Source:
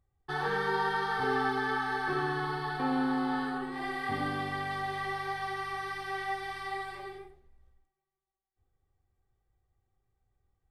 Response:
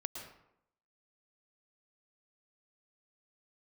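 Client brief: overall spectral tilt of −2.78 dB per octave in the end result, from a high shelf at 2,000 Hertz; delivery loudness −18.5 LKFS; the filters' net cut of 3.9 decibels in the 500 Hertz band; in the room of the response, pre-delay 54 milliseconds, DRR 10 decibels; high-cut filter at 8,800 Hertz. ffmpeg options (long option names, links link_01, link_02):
-filter_complex "[0:a]lowpass=8800,equalizer=frequency=500:width_type=o:gain=-5.5,highshelf=frequency=2000:gain=3,asplit=2[link_01][link_02];[1:a]atrim=start_sample=2205,adelay=54[link_03];[link_02][link_03]afir=irnorm=-1:irlink=0,volume=-9.5dB[link_04];[link_01][link_04]amix=inputs=2:normalize=0,volume=14dB"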